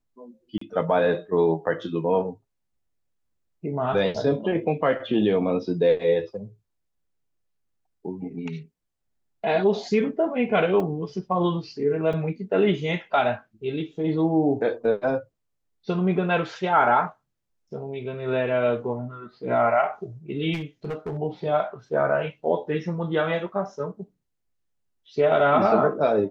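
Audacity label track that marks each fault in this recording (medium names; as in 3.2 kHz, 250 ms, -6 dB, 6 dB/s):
0.580000	0.610000	dropout 34 ms
10.800000	10.800000	dropout 2.4 ms
12.130000	12.130000	dropout 4.1 ms
20.530000	21.170000	clipped -26 dBFS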